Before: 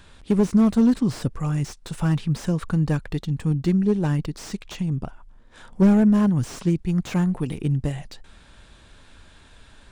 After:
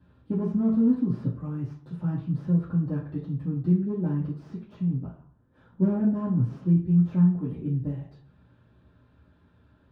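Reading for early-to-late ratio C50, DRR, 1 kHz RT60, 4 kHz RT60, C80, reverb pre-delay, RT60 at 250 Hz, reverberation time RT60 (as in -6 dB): 6.0 dB, -6.5 dB, 0.45 s, 0.40 s, 11.0 dB, 3 ms, 0.60 s, 0.50 s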